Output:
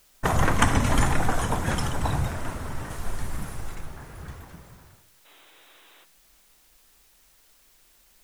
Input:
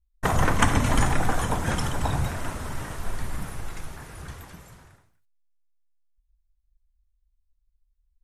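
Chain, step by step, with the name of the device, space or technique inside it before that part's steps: plain cassette with noise reduction switched in (mismatched tape noise reduction decoder only; wow and flutter; white noise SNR 33 dB); 2.9–3.75 bell 8600 Hz +5.5 dB 2.2 oct; 5.25–6.04 spectral gain 260–4000 Hz +12 dB

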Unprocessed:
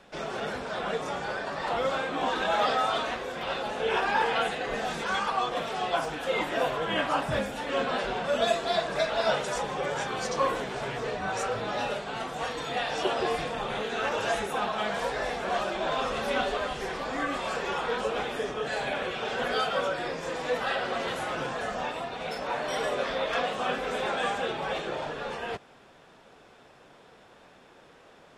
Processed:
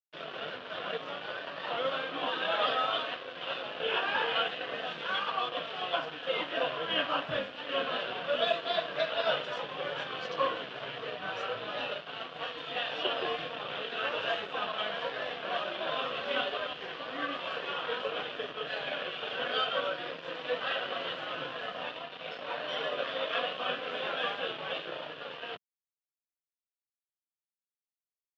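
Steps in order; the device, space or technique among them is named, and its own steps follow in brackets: blown loudspeaker (crossover distortion -39 dBFS; speaker cabinet 190–3700 Hz, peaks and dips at 220 Hz -10 dB, 390 Hz -7 dB, 840 Hz -9 dB, 2100 Hz -5 dB, 3000 Hz +8 dB)

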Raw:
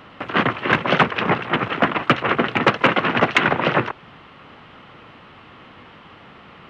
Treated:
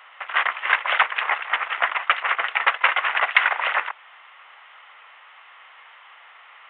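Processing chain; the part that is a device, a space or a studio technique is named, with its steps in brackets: musical greeting card (downsampling 8000 Hz; HPF 770 Hz 24 dB/oct; bell 2000 Hz +5.5 dB 0.44 oct); gain -2.5 dB

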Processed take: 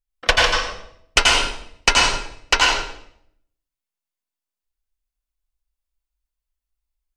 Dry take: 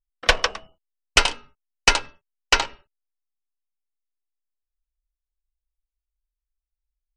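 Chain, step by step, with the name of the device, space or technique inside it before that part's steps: bathroom (reverb RT60 0.65 s, pre-delay 81 ms, DRR -2.5 dB)

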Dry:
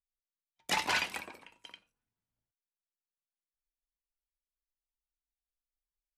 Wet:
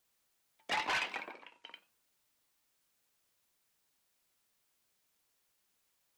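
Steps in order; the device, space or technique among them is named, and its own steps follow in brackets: tape answering machine (BPF 310–3300 Hz; soft clip -29.5 dBFS, distortion -12 dB; wow and flutter; white noise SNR 32 dB); 1.32–1.74 LPF 7900 Hz; gain +1.5 dB

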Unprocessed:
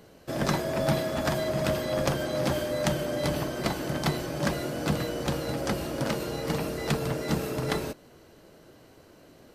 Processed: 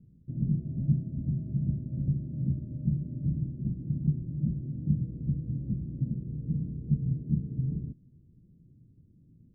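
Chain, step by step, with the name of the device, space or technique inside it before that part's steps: the neighbour's flat through the wall (LPF 210 Hz 24 dB/oct; bell 130 Hz +5 dB 0.97 oct)

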